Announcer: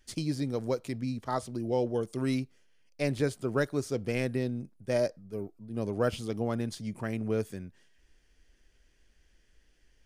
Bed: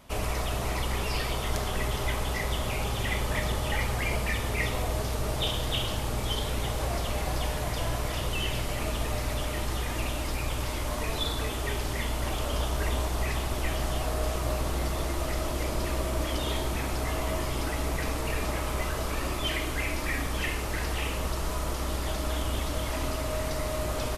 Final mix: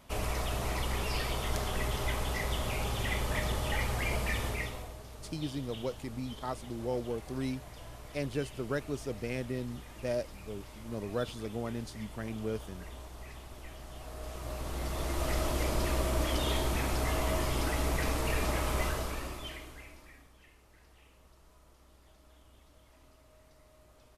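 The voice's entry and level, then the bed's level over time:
5.15 s, -5.5 dB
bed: 4.46 s -3.5 dB
4.98 s -17.5 dB
13.86 s -17.5 dB
15.32 s -1 dB
18.86 s -1 dB
20.37 s -30 dB

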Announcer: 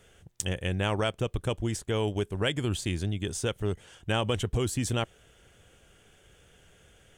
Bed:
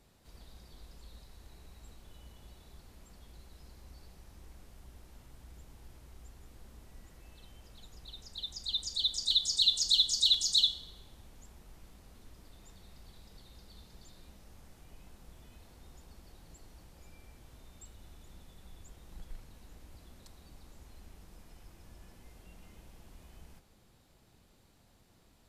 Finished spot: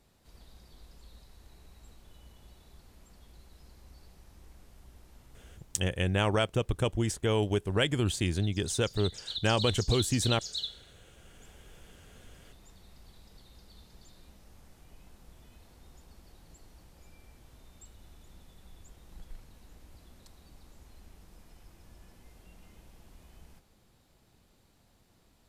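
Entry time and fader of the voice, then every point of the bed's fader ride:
5.35 s, +1.0 dB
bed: 5.48 s -1 dB
6.05 s -9.5 dB
10.91 s -9.5 dB
11.49 s -0.5 dB

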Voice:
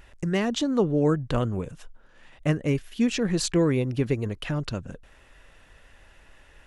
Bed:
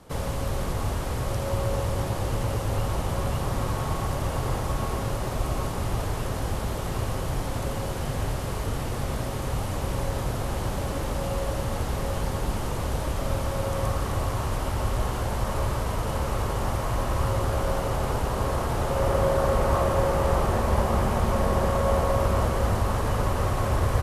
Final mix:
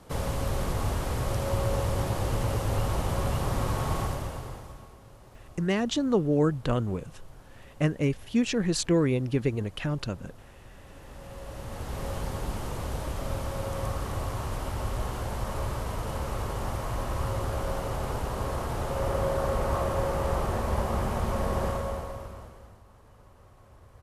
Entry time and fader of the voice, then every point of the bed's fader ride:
5.35 s, -1.5 dB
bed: 4.01 s -1 dB
4.97 s -23 dB
10.73 s -23 dB
12.06 s -5 dB
21.68 s -5 dB
22.83 s -30 dB

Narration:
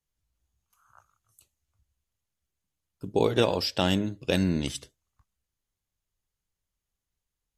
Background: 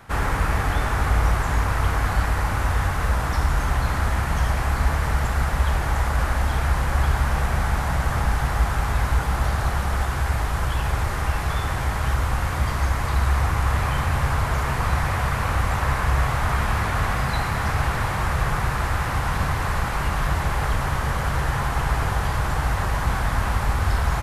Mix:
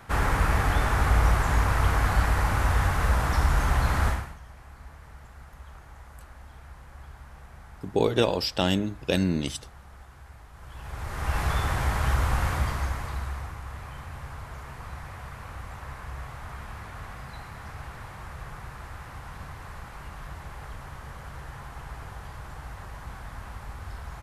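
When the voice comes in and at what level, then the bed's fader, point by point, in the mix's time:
4.80 s, +0.5 dB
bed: 4.09 s -1.5 dB
4.39 s -25 dB
10.52 s -25 dB
11.39 s -2 dB
12.49 s -2 dB
13.61 s -17.5 dB

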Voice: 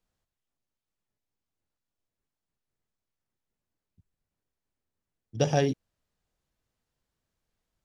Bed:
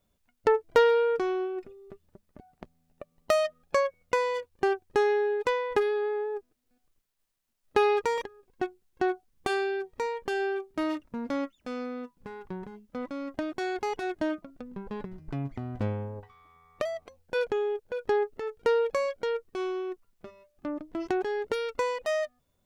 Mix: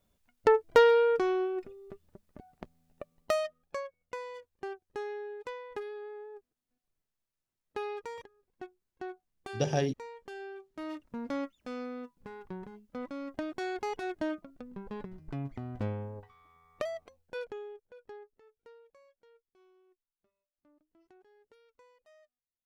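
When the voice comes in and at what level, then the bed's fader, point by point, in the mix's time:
4.20 s, -4.5 dB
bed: 3.04 s 0 dB
3.87 s -14 dB
10.69 s -14 dB
11.13 s -4 dB
16.96 s -4 dB
18.83 s -33 dB

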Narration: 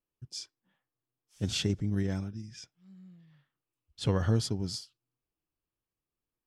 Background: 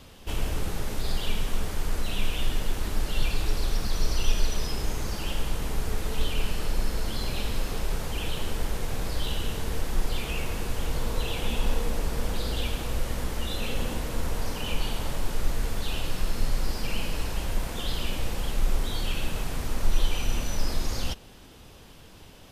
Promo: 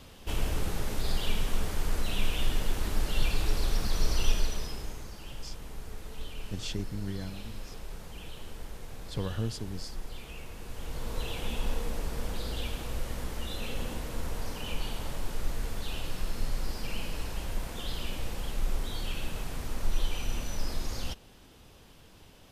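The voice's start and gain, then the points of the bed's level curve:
5.10 s, -6.0 dB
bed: 4.27 s -1.5 dB
5.13 s -13 dB
10.55 s -13 dB
11.2 s -5.5 dB

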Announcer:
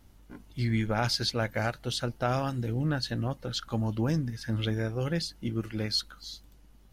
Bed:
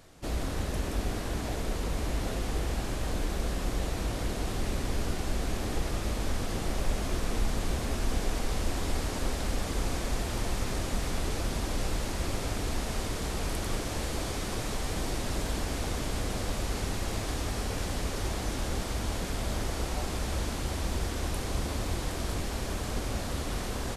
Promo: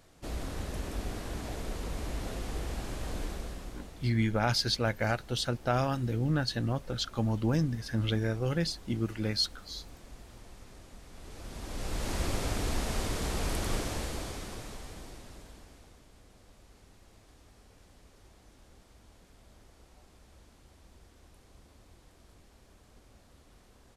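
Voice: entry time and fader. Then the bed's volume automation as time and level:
3.45 s, 0.0 dB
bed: 3.25 s -5 dB
4.14 s -20 dB
11.08 s -20 dB
12.13 s 0 dB
13.79 s 0 dB
16.07 s -26 dB

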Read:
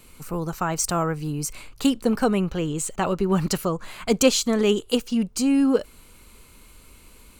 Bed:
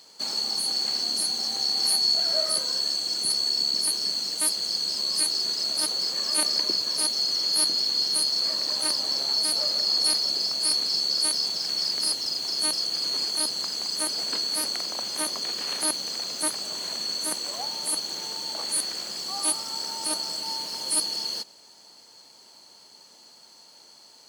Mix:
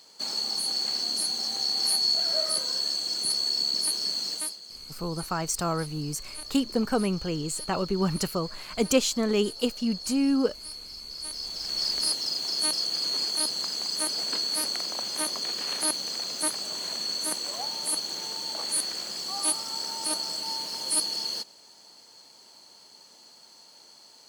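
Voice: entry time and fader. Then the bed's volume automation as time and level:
4.70 s, -4.5 dB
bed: 4.34 s -2 dB
4.6 s -16.5 dB
11.04 s -16.5 dB
11.84 s -1 dB

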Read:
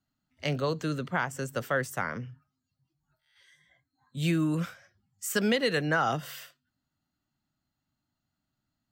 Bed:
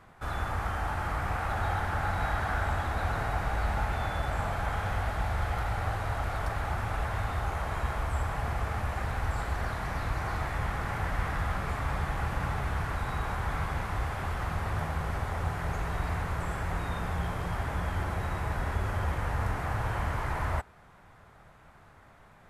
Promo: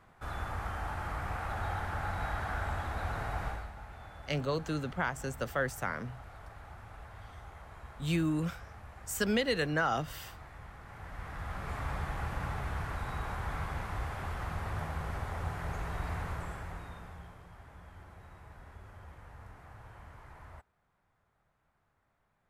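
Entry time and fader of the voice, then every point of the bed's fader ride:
3.85 s, -3.5 dB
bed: 3.48 s -5.5 dB
3.72 s -17.5 dB
10.83 s -17.5 dB
11.78 s -5 dB
16.3 s -5 dB
17.48 s -20.5 dB

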